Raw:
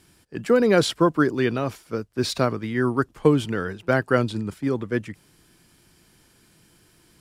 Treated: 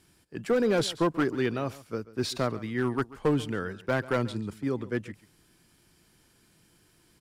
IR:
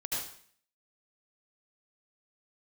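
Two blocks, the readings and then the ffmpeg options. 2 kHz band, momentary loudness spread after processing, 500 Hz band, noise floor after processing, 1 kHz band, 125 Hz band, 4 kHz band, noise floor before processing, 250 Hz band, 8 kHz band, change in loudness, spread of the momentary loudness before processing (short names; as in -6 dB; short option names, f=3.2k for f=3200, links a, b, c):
-6.5 dB, 9 LU, -6.5 dB, -64 dBFS, -6.5 dB, -6.5 dB, -5.5 dB, -59 dBFS, -6.5 dB, -5.5 dB, -6.5 dB, 10 LU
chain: -filter_complex "[0:a]asoftclip=type=hard:threshold=-13.5dB,asplit=2[a][b];[b]aecho=0:1:137:0.119[c];[a][c]amix=inputs=2:normalize=0,volume=-5.5dB"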